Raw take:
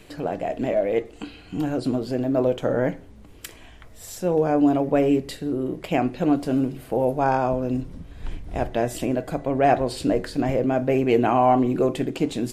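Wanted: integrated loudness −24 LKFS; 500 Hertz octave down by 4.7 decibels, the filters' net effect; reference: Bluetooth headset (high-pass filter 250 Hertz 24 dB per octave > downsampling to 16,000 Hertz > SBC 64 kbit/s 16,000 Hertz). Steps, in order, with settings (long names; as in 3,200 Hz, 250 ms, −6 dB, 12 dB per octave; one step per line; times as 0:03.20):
high-pass filter 250 Hz 24 dB per octave
parametric band 500 Hz −6 dB
downsampling to 16,000 Hz
level +3 dB
SBC 64 kbit/s 16,000 Hz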